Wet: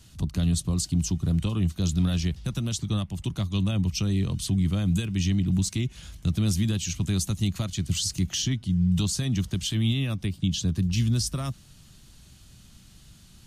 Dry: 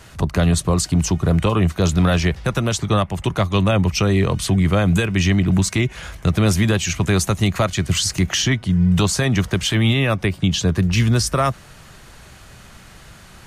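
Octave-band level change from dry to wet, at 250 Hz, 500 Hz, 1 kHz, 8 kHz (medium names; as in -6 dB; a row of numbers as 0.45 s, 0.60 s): -7.5 dB, -18.0 dB, -20.0 dB, -7.0 dB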